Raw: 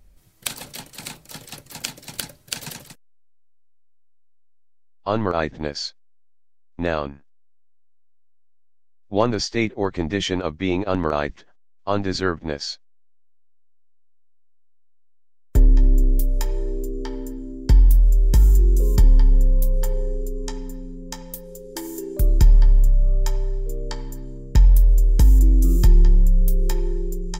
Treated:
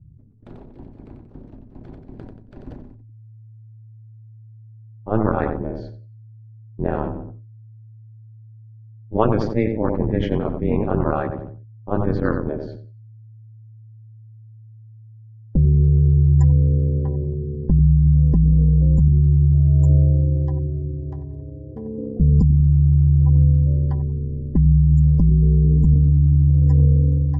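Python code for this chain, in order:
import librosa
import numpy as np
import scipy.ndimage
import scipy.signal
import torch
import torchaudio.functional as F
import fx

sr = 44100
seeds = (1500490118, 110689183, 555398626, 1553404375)

p1 = fx.notch(x, sr, hz=580.0, q=12.0)
p2 = p1 + fx.echo_feedback(p1, sr, ms=91, feedback_pct=40, wet_db=-9.0, dry=0)
p3 = fx.spec_gate(p2, sr, threshold_db=-30, keep='strong')
p4 = p3 * np.sin(2.0 * np.pi * 110.0 * np.arange(len(p3)) / sr)
p5 = fx.env_lowpass(p4, sr, base_hz=340.0, full_db=-11.0)
p6 = fx.over_compress(p5, sr, threshold_db=-18.0, ratio=-0.5)
p7 = p5 + (p6 * librosa.db_to_amplitude(2.0))
p8 = fx.low_shelf(p7, sr, hz=330.0, db=5.0)
p9 = fx.sustainer(p8, sr, db_per_s=49.0)
y = p9 * librosa.db_to_amplitude(-7.5)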